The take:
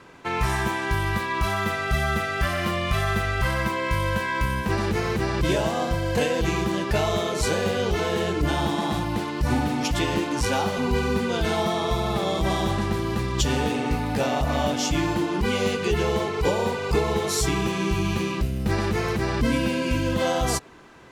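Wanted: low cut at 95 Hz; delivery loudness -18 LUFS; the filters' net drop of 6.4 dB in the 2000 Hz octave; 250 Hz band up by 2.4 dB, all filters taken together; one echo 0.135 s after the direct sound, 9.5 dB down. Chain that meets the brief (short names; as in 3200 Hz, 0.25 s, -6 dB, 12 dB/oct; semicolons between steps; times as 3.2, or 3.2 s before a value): HPF 95 Hz; bell 250 Hz +3.5 dB; bell 2000 Hz -8.5 dB; echo 0.135 s -9.5 dB; gain +6.5 dB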